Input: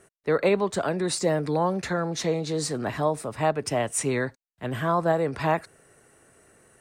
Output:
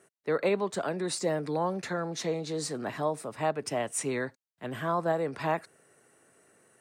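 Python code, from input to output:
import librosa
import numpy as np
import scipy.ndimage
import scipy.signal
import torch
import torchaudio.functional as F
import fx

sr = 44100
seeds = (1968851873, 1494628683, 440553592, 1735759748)

y = scipy.signal.sosfilt(scipy.signal.butter(2, 150.0, 'highpass', fs=sr, output='sos'), x)
y = y * 10.0 ** (-5.0 / 20.0)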